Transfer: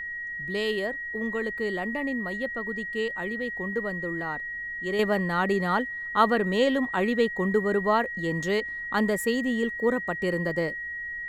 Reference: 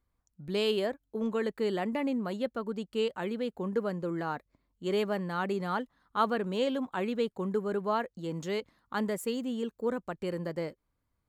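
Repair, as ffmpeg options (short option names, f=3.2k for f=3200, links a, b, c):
-af "bandreject=f=1.9k:w=30,agate=range=-21dB:threshold=-27dB,asetnsamples=n=441:p=0,asendcmd='4.99 volume volume -6.5dB',volume=0dB"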